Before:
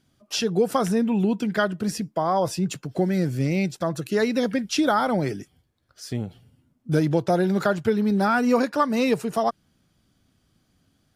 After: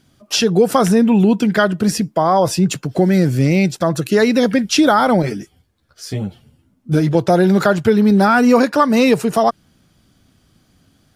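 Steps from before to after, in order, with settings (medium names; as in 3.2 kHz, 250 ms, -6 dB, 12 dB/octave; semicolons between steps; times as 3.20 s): in parallel at -1 dB: peak limiter -16.5 dBFS, peak gain reduction 7.5 dB; 5.22–7.15 s: on the sum: three-phase chorus; trim +4.5 dB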